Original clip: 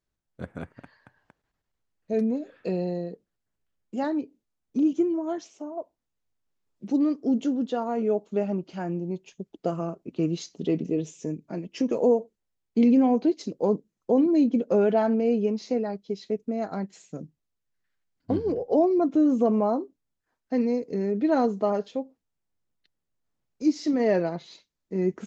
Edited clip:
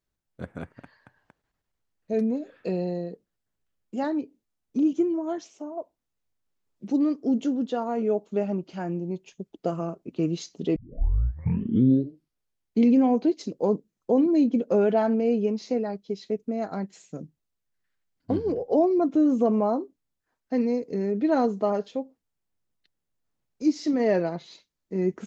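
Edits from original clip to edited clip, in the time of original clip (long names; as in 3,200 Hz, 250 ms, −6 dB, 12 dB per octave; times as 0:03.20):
0:10.76: tape start 2.07 s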